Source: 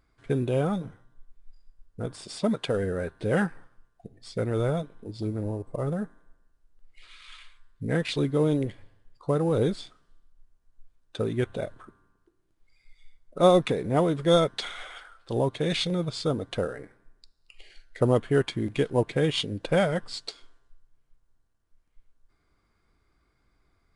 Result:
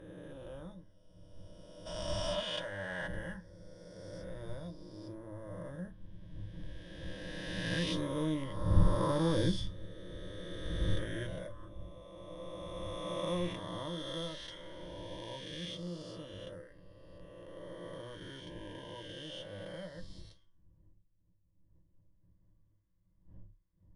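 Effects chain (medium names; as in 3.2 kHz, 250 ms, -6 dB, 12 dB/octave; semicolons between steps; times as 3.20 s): reverse spectral sustain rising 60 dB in 2.92 s; wind noise 100 Hz -31 dBFS; Doppler pass-by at 9.33 s, 8 m/s, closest 7.9 m; dynamic bell 440 Hz, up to -7 dB, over -41 dBFS, Q 0.77; on a send at -9 dB: reverberation, pre-delay 6 ms; on the sum: time-frequency box 1.86–3.07 s, 580–9300 Hz +12 dB; rippled EQ curve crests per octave 1.2, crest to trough 12 dB; trim -7 dB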